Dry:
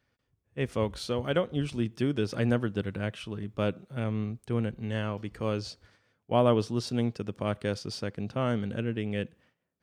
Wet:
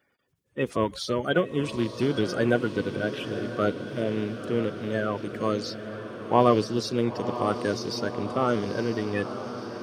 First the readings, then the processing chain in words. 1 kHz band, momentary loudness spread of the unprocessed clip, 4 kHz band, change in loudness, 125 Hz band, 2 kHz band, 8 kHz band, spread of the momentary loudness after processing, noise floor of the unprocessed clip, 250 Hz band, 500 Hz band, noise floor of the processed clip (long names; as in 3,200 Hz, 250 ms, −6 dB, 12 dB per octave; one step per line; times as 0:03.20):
+7.5 dB, 8 LU, +4.0 dB, +3.5 dB, −1.5 dB, +6.5 dB, +5.0 dB, 7 LU, −79 dBFS, +3.5 dB, +5.0 dB, −70 dBFS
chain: spectral magnitudes quantised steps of 30 dB
high-pass filter 200 Hz 6 dB per octave
feedback delay with all-pass diffusion 974 ms, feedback 65%, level −10 dB
level +5.5 dB